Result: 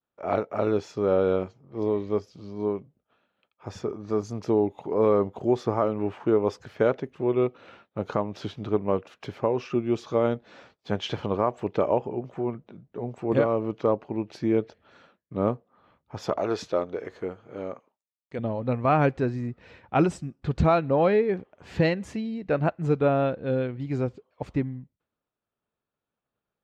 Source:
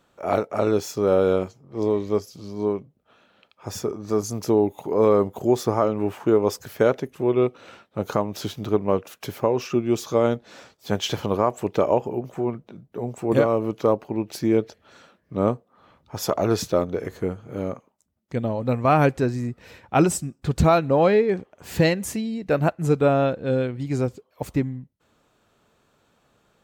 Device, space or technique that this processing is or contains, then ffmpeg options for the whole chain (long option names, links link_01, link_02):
hearing-loss simulation: -filter_complex "[0:a]lowpass=3500,agate=range=-33dB:threshold=-51dB:ratio=3:detection=peak,asettb=1/sr,asplit=3[link_01][link_02][link_03];[link_01]atrim=end=16.384[link_04];[link_02]atrim=start=16.38:end=18.39,asetpts=PTS-STARTPTS,afade=type=in:duration=0.004:curve=qsin,afade=type=out:start_time=2.006:duration=0.004:curve=qsin,bass=frequency=250:gain=-11,treble=frequency=4000:gain=3[link_05];[link_03]atrim=start=18.386[link_06];[link_04][link_05]acrossfade=duration=0.004:curve1=hsin:curve2=qsin[link_07];[link_07][link_06]acrossfade=duration=0.004:curve1=qsin:curve2=hsin,volume=-3.5dB"